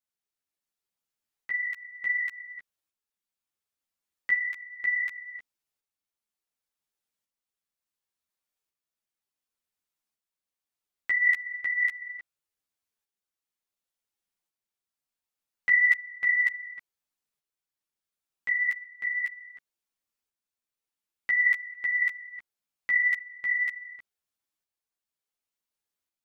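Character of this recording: tremolo saw up 0.69 Hz, depth 45%; a shimmering, thickened sound

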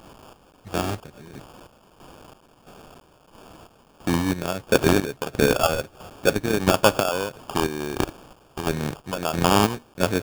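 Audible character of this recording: a quantiser's noise floor 8-bit, dither triangular; chopped level 1.5 Hz, depth 65%, duty 50%; aliases and images of a low sample rate 2000 Hz, jitter 0%

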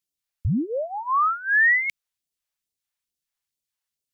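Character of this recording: phasing stages 2, 2.3 Hz, lowest notch 210–1400 Hz

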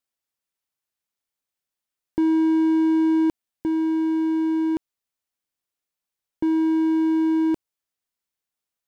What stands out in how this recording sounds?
noise floor -87 dBFS; spectral tilt -2.5 dB/oct

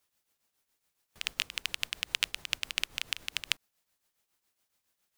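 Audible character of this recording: tremolo triangle 7.2 Hz, depth 70%

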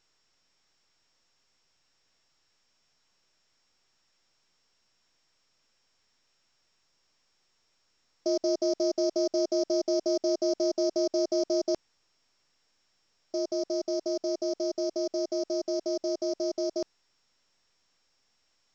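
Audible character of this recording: a buzz of ramps at a fixed pitch in blocks of 8 samples; A-law

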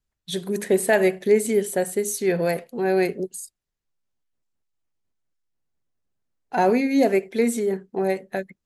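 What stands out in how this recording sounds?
noise floor -82 dBFS; spectral tilt -4.0 dB/oct

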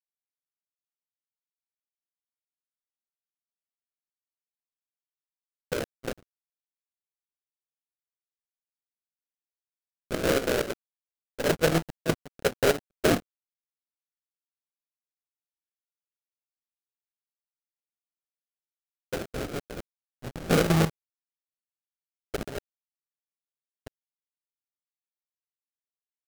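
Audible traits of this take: a quantiser's noise floor 6-bit, dither none; chopped level 4.3 Hz, depth 60%, duty 65%; phasing stages 8, 0.088 Hz, lowest notch 670–1700 Hz; aliases and images of a low sample rate 1000 Hz, jitter 20%

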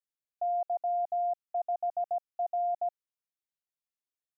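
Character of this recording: noise floor -95 dBFS; spectral tilt -1.5 dB/oct

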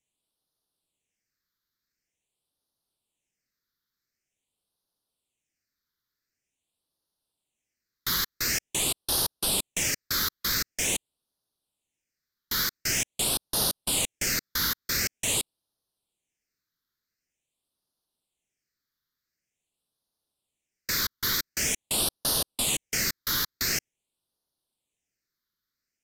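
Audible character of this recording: phasing stages 6, 0.46 Hz, lowest notch 690–2200 Hz; AAC

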